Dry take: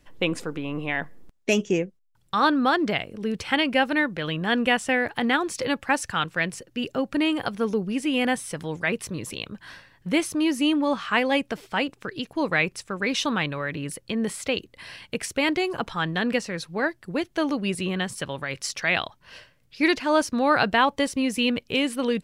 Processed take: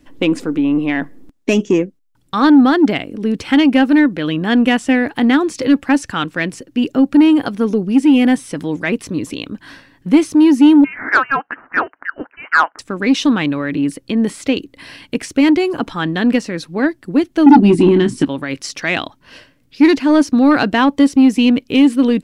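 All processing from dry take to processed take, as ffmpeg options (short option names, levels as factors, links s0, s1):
-filter_complex "[0:a]asettb=1/sr,asplit=3[s0][s1][s2];[s0]atrim=end=10.844[s3];[s1]atrim=start=10.84:end=12.79,asetpts=PTS-STARTPTS,afade=t=in:d=0.004:c=qsin,afade=t=out:st=1.946:d=0.004:c=qsin,highpass=f=1800:t=q:w=3.8,lowpass=f=2800:t=q:w=0.5098,lowpass=f=2800:t=q:w=0.6013,lowpass=f=2800:t=q:w=0.9,lowpass=f=2800:t=q:w=2.563,afreqshift=-3300[s4];[s2]atrim=start=12.786[s5];[s3][s4]acrossfade=d=0.004:c1=hsin:c2=qsin[s6];[s6][s5]acrossfade=d=0.004:c1=qsin:c2=hsin,asettb=1/sr,asplit=3[s7][s8][s9];[s7]atrim=end=17.464[s10];[s8]atrim=start=17.46:end=18.25,asetpts=PTS-STARTPTS,afade=t=in:d=0.004:c=qsin,afade=t=out:st=0.786:d=0.004:c=qsin,lowpass=f=11000:w=0.5412,lowpass=f=11000:w=1.3066,lowshelf=f=440:t=q:w=3:g=7.5,asplit=2[s11][s12];[s12]adelay=24,volume=0.376[s13];[s11][s13]amix=inputs=2:normalize=0,atrim=end_sample=34839[s14];[s9]atrim=start=18.246[s15];[s10][s14]acrossfade=d=0.004:c1=hsin:c2=qsin[s16];[s16][s15]acrossfade=d=0.004:c1=qsin:c2=hsin,acrossover=split=8000[s17][s18];[s18]acompressor=threshold=0.00562:ratio=4:attack=1:release=60[s19];[s17][s19]amix=inputs=2:normalize=0,equalizer=f=280:t=o:w=0.62:g=14,acontrast=46,volume=0.891"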